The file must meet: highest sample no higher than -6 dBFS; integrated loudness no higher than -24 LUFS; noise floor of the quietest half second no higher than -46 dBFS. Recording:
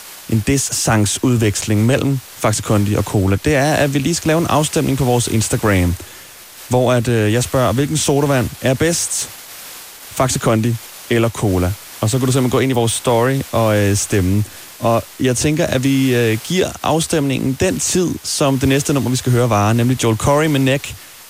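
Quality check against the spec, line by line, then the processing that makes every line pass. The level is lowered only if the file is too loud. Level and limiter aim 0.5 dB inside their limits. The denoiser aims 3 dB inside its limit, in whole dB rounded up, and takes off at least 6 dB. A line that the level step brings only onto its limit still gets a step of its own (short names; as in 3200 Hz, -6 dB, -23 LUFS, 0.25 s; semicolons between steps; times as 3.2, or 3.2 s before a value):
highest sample -4.0 dBFS: fail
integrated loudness -16.0 LUFS: fail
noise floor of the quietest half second -38 dBFS: fail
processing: gain -8.5 dB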